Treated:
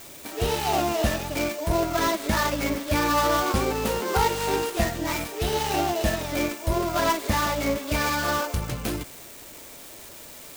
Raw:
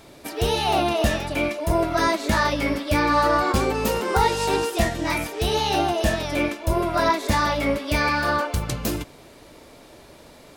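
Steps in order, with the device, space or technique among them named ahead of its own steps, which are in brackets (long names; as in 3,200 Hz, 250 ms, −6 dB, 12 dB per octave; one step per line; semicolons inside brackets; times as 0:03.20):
budget class-D amplifier (gap after every zero crossing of 0.13 ms; spike at every zero crossing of −25 dBFS)
level −2.5 dB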